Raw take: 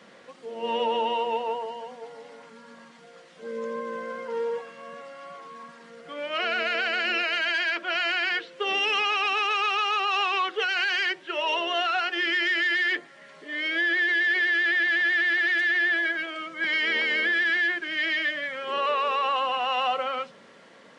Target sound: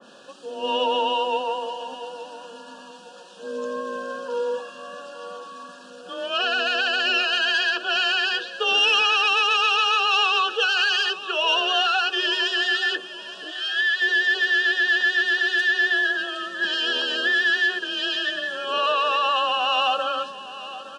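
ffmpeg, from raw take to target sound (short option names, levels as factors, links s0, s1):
-filter_complex "[0:a]asplit=3[s0][s1][s2];[s0]afade=t=out:st=13.5:d=0.02[s3];[s1]highpass=1100,afade=t=in:st=13.5:d=0.02,afade=t=out:st=14:d=0.02[s4];[s2]afade=t=in:st=14:d=0.02[s5];[s3][s4][s5]amix=inputs=3:normalize=0,acontrast=76,afreqshift=22,asuperstop=centerf=2100:order=20:qfactor=3,aecho=1:1:866|1732|2598:0.178|0.0587|0.0194,adynamicequalizer=threshold=0.00224:dfrequency=2200:dqfactor=0.7:tfrequency=2200:tqfactor=0.7:attack=5:release=100:ratio=0.375:range=3:mode=boostabove:tftype=highshelf,volume=0.631"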